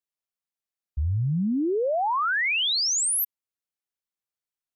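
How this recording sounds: noise floor -93 dBFS; spectral tilt -3.5 dB/oct

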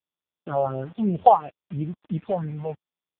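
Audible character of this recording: phasing stages 4, 2.9 Hz, lowest notch 270–1100 Hz; a quantiser's noise floor 8-bit, dither none; AMR-NB

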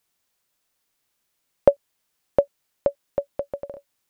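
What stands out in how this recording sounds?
noise floor -75 dBFS; spectral tilt -4.5 dB/oct

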